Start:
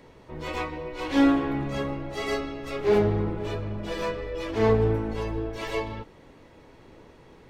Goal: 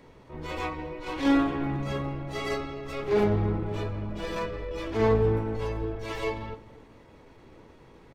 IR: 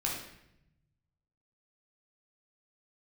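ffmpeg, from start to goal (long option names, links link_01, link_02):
-filter_complex "[0:a]asplit=2[link_01][link_02];[link_02]adelay=229,lowpass=frequency=930:poles=1,volume=-16dB,asplit=2[link_03][link_04];[link_04]adelay=229,lowpass=frequency=930:poles=1,volume=0.36,asplit=2[link_05][link_06];[link_06]adelay=229,lowpass=frequency=930:poles=1,volume=0.36[link_07];[link_01][link_03][link_05][link_07]amix=inputs=4:normalize=0,asplit=2[link_08][link_09];[1:a]atrim=start_sample=2205,afade=type=out:start_time=0.14:duration=0.01,atrim=end_sample=6615,lowpass=3000[link_10];[link_09][link_10]afir=irnorm=-1:irlink=0,volume=-16dB[link_11];[link_08][link_11]amix=inputs=2:normalize=0,atempo=0.92,volume=-2.5dB"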